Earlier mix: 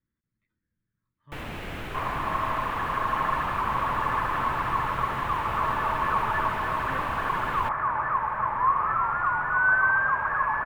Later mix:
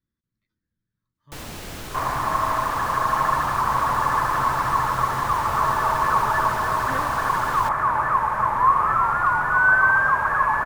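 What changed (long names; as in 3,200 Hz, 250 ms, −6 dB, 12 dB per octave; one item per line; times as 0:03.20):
second sound +6.5 dB
master: add high shelf with overshoot 3,700 Hz +12.5 dB, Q 1.5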